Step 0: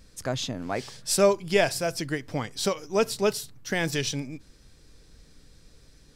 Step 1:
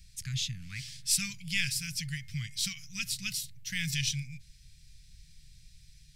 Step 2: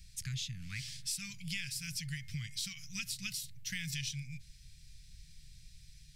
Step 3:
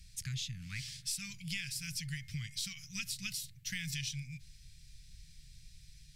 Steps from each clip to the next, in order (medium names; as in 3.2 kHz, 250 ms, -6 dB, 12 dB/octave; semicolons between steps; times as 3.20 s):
elliptic band-stop 150–2200 Hz, stop band 70 dB; peaking EQ 300 Hz -10 dB 0.46 oct; de-hum 355.7 Hz, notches 6
compression 6:1, threshold -36 dBFS, peak gain reduction 13 dB
Opus 128 kbps 48 kHz